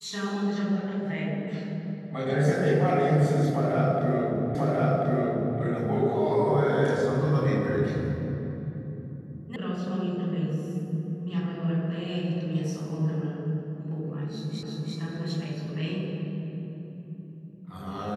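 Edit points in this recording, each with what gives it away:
0:04.55: the same again, the last 1.04 s
0:09.56: cut off before it has died away
0:14.63: the same again, the last 0.34 s

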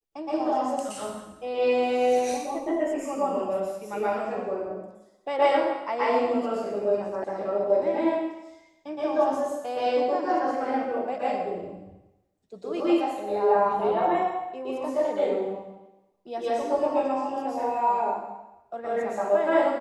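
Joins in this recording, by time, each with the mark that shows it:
0:07.24: cut off before it has died away

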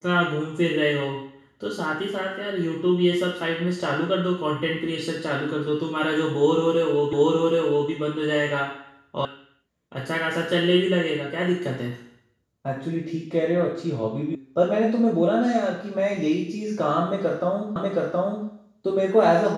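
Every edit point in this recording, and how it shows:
0:07.13: the same again, the last 0.77 s
0:09.25: cut off before it has died away
0:14.35: cut off before it has died away
0:17.76: the same again, the last 0.72 s

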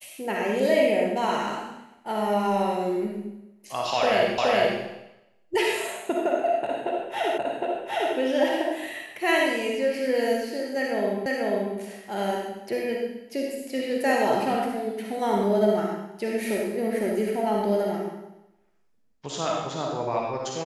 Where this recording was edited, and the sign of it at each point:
0:04.38: the same again, the last 0.42 s
0:07.38: the same again, the last 0.76 s
0:11.26: the same again, the last 0.49 s

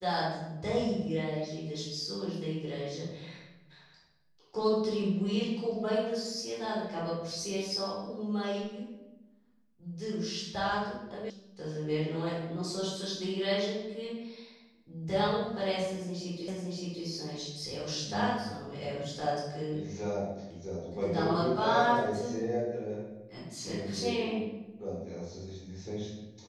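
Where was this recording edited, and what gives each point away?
0:11.30: cut off before it has died away
0:16.48: the same again, the last 0.57 s

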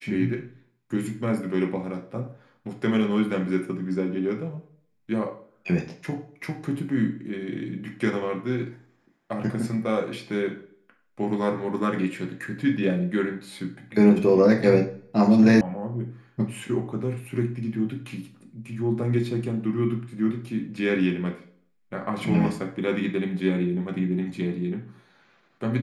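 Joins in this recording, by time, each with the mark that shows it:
0:15.61: cut off before it has died away

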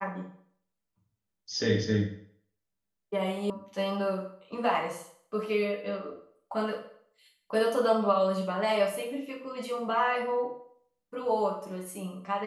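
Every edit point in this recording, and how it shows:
0:03.50: cut off before it has died away

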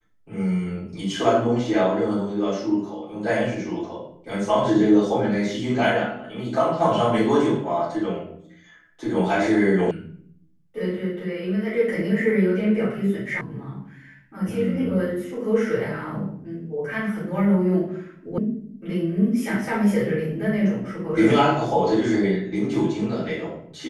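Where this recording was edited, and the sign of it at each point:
0:09.91: cut off before it has died away
0:13.41: cut off before it has died away
0:18.38: cut off before it has died away

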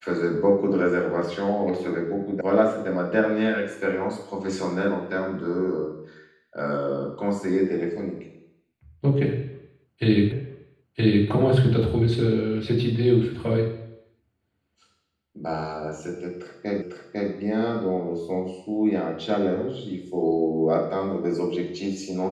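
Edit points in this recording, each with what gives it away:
0:02.41: cut off before it has died away
0:10.32: the same again, the last 0.97 s
0:16.82: the same again, the last 0.5 s

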